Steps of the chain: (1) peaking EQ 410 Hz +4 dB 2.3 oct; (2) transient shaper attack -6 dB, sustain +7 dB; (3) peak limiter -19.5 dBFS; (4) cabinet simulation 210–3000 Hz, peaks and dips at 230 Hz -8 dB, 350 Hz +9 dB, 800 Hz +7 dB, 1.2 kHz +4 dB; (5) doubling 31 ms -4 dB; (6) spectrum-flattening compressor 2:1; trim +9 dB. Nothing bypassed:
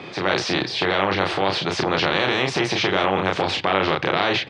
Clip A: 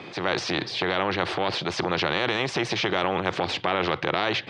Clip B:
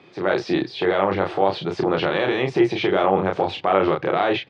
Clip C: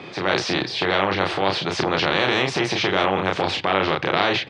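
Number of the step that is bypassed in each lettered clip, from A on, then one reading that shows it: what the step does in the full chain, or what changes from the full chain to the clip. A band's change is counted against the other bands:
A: 5, crest factor change +1.5 dB; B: 6, 4 kHz band -8.0 dB; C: 3, crest factor change +2.0 dB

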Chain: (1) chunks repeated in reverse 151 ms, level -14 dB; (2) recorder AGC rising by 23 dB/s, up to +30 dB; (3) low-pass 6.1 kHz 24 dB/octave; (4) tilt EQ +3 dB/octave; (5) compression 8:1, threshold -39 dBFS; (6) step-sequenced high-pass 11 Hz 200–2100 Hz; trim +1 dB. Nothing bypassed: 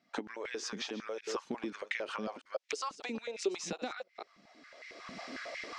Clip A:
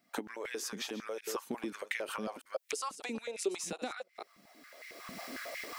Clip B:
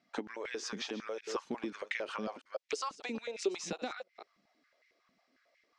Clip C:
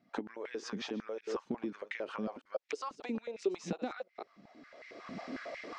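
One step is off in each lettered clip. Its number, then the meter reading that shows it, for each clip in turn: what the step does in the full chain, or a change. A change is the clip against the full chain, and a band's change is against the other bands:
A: 3, 8 kHz band +4.0 dB; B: 2, momentary loudness spread change -5 LU; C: 4, 8 kHz band -8.5 dB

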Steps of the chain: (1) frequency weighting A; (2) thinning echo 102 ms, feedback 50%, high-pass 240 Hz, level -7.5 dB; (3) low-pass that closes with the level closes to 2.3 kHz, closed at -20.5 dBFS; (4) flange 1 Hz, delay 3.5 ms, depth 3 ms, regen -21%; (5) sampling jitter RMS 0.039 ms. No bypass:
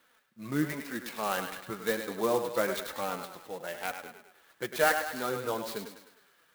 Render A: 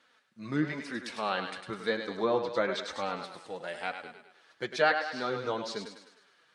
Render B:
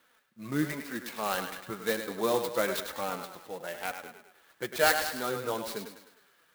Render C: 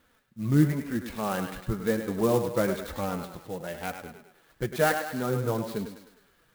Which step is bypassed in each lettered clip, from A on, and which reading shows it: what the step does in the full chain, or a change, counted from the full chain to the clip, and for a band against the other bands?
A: 5, 8 kHz band -9.5 dB; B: 3, 4 kHz band +3.5 dB; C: 1, 125 Hz band +14.5 dB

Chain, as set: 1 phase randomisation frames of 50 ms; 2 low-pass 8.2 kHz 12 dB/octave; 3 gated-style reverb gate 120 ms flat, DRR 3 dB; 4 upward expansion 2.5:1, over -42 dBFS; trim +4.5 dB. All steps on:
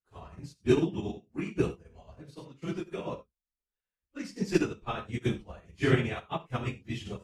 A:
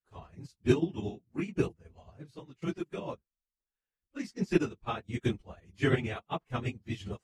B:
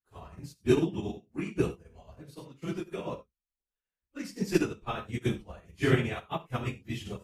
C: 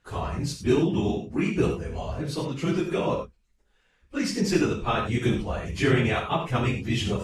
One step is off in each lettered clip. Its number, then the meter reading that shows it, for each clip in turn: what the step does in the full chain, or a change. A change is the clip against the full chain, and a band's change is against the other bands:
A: 3, momentary loudness spread change -1 LU; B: 2, 8 kHz band +2.0 dB; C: 4, 8 kHz band +4.0 dB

